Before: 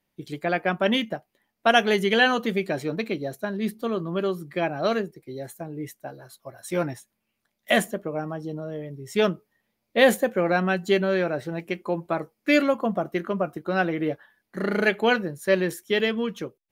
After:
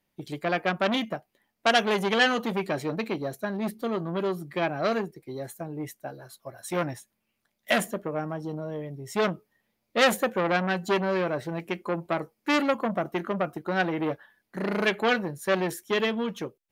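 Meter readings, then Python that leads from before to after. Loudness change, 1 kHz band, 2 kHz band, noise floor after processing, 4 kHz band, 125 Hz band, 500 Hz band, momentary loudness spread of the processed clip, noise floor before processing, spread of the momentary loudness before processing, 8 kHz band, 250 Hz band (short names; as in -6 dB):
-3.0 dB, -1.0 dB, -2.5 dB, -79 dBFS, -1.5 dB, -2.0 dB, -3.5 dB, 14 LU, -79 dBFS, 16 LU, 0.0 dB, -3.0 dB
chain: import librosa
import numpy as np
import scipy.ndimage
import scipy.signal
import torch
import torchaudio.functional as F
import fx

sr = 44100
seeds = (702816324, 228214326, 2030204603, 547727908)

y = fx.transformer_sat(x, sr, knee_hz=2400.0)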